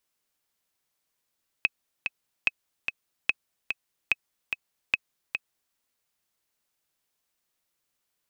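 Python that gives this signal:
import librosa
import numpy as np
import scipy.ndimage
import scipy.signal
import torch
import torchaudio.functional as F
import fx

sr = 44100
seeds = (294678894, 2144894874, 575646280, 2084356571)

y = fx.click_track(sr, bpm=146, beats=2, bars=5, hz=2560.0, accent_db=6.5, level_db=-8.0)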